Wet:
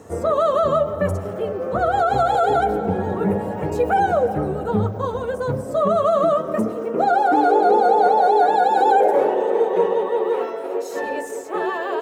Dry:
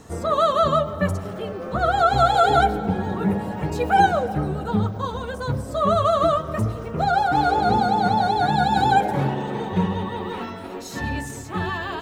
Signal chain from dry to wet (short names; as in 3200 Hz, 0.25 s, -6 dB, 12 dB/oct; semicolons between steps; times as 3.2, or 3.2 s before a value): graphic EQ 125/500/4000 Hz -9/+8/-7 dB; limiter -10.5 dBFS, peak gain reduction 8 dB; high-pass sweep 100 Hz -> 440 Hz, 5.16–7.96